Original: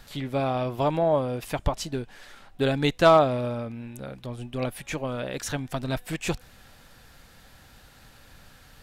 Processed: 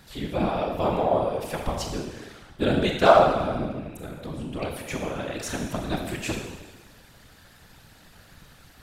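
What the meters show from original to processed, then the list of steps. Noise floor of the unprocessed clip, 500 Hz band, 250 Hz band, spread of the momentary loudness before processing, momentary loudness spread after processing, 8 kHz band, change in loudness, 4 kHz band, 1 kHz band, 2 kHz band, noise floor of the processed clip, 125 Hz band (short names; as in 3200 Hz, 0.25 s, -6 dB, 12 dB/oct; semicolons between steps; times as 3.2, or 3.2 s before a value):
-53 dBFS, +1.0 dB, +1.0 dB, 17 LU, 19 LU, +0.5 dB, +1.0 dB, +0.5 dB, +2.5 dB, +1.0 dB, -53 dBFS, -2.0 dB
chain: Schroeder reverb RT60 1.2 s, combs from 26 ms, DRR 2 dB; whisperiser; gain -1.5 dB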